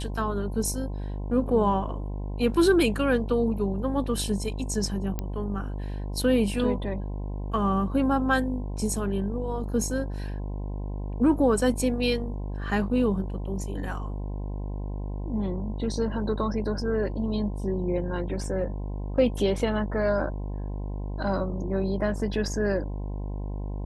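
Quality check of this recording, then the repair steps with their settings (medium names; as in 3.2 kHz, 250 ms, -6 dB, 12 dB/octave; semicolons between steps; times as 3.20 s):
buzz 50 Hz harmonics 21 -32 dBFS
5.19 s: pop -16 dBFS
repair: de-click; de-hum 50 Hz, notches 21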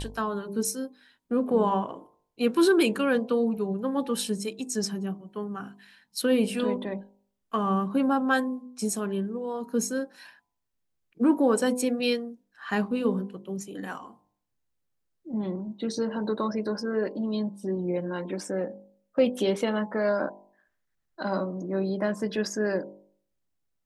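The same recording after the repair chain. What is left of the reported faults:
nothing left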